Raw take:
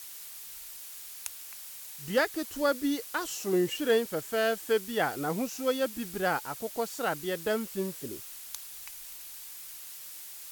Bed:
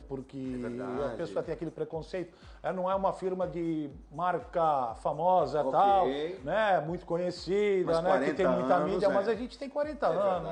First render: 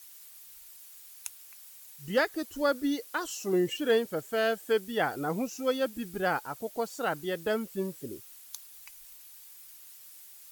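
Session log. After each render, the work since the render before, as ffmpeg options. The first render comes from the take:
-af "afftdn=nr=9:nf=-45"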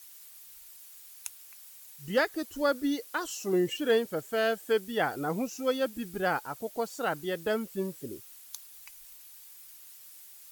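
-af anull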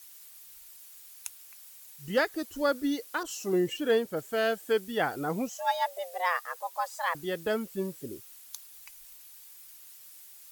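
-filter_complex "[0:a]asettb=1/sr,asplit=3[a][b][c];[a]atrim=end=3.234[d];[b]atrim=start=3.23:end=4.17,asetpts=PTS-STARTPTS,afade=t=in:d=0.004:c=qsin,afade=t=out:st=0.936:d=0.004:c=qsin,adynamicequalizer=threshold=0.00794:dfrequency=1700:dqfactor=0.7:tfrequency=1700:tqfactor=0.7:attack=5:release=100:ratio=0.375:range=1.5:mode=cutabove:tftype=highshelf[e];[c]atrim=start=4.166[f];[d][e]acrossfade=d=0.004:c1=hsin:c2=qsin[g];[g][f]acrossfade=d=0.004:c1=qsin:c2=hsin,asettb=1/sr,asplit=3[h][i][j];[h]atrim=end=5.494[k];[i]atrim=start=5.49:end=7.15,asetpts=PTS-STARTPTS,afade=t=in:d=0.004:c=qsin,afade=t=out:st=1.656:d=0.004:c=qsin,afreqshift=350[l];[j]atrim=start=7.146[m];[k][l]acrossfade=d=0.004:c1=hsin:c2=qsin[n];[n][m]acrossfade=d=0.004:c1=qsin:c2=hsin"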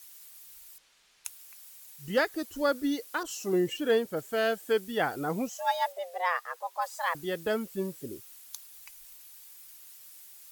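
-filter_complex "[0:a]asettb=1/sr,asplit=3[a][b][c];[a]atrim=end=0.784[d];[b]atrim=start=0.78:end=1.25,asetpts=PTS-STARTPTS,afade=t=in:d=0.004:c=qsin,afade=t=out:st=0.466:d=0.004:c=qsin,lowpass=3.9k[e];[c]atrim=start=1.246[f];[d][e]acrossfade=d=0.004:c1=hsin:c2=qsin[g];[g][f]acrossfade=d=0.004:c1=qsin:c2=hsin,asettb=1/sr,asplit=3[h][i][j];[h]atrim=end=5.924[k];[i]atrim=start=5.92:end=6.82,asetpts=PTS-STARTPTS,afade=t=in:d=0.004:c=qsin,afade=t=out:st=0.896:d=0.004:c=qsin,highshelf=f=5.9k:g=-9[l];[j]atrim=start=6.816[m];[k][l]acrossfade=d=0.004:c1=hsin:c2=qsin[n];[n][m]acrossfade=d=0.004:c1=qsin:c2=hsin"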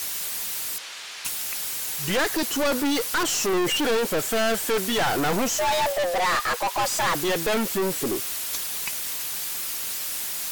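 -filter_complex "[0:a]asplit=2[a][b];[b]highpass=f=720:p=1,volume=35dB,asoftclip=type=tanh:threshold=-14.5dB[c];[a][c]amix=inputs=2:normalize=0,lowpass=f=6.5k:p=1,volume=-6dB,aeval=exprs='clip(val(0),-1,0.0596)':c=same"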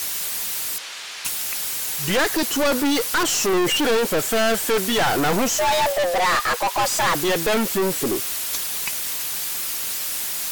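-af "volume=3.5dB"

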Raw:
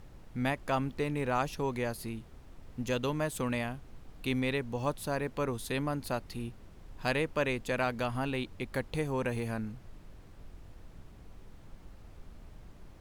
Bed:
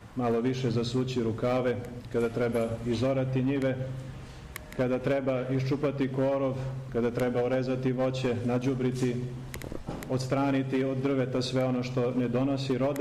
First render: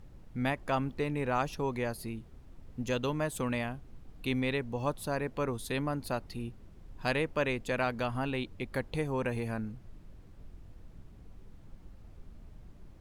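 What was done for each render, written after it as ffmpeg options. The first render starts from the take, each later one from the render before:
-af "afftdn=nr=6:nf=-53"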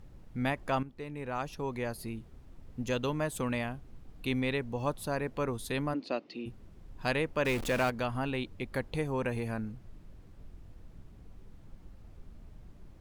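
-filter_complex "[0:a]asplit=3[a][b][c];[a]afade=t=out:st=5.93:d=0.02[d];[b]highpass=f=220:w=0.5412,highpass=f=220:w=1.3066,equalizer=f=310:t=q:w=4:g=7,equalizer=f=550:t=q:w=4:g=3,equalizer=f=890:t=q:w=4:g=-6,equalizer=f=1.5k:t=q:w=4:g=-6,equalizer=f=2.7k:t=q:w=4:g=5,lowpass=f=5.2k:w=0.5412,lowpass=f=5.2k:w=1.3066,afade=t=in:st=5.93:d=0.02,afade=t=out:st=6.45:d=0.02[e];[c]afade=t=in:st=6.45:d=0.02[f];[d][e][f]amix=inputs=3:normalize=0,asettb=1/sr,asplit=3[g][h][i];[g]atrim=end=7.454[j];[h]atrim=start=7.45:end=7.9,asetpts=PTS-STARTPTS,afade=t=in:d=0.004:c=qsin,afade=t=out:st=0.446:d=0.004:c=qsin,aeval=exprs='val(0)+0.5*0.0211*sgn(val(0))':c=same[k];[i]atrim=start=7.896[l];[j][k]acrossfade=d=0.004:c1=hsin:c2=qsin[m];[m][l]acrossfade=d=0.004:c1=qsin:c2=hsin,asplit=2[n][o];[n]atrim=end=0.83,asetpts=PTS-STARTPTS,afade=t=out:st=0.826:d=0.004:c=hsin:silence=0.237137[p];[o]atrim=start=0.83,asetpts=PTS-STARTPTS,afade=t=in:d=1.29:silence=0.237137[q];[p][q]concat=n=2:v=0:a=1"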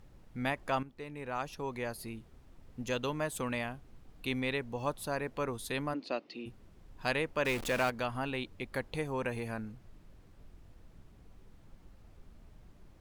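-af "lowshelf=f=400:g=-5.5"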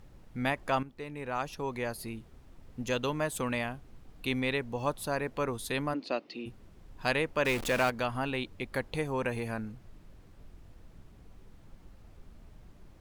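-af "volume=3dB"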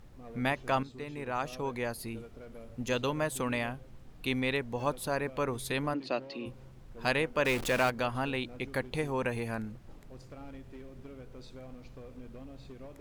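-filter_complex "[1:a]volume=-21dB[a];[0:a][a]amix=inputs=2:normalize=0"

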